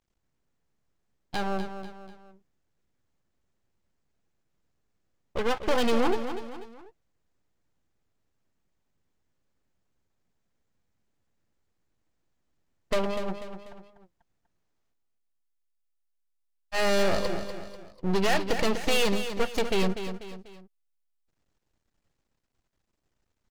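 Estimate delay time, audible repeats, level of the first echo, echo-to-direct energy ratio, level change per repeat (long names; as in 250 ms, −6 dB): 245 ms, 3, −9.5 dB, −8.5 dB, −7.5 dB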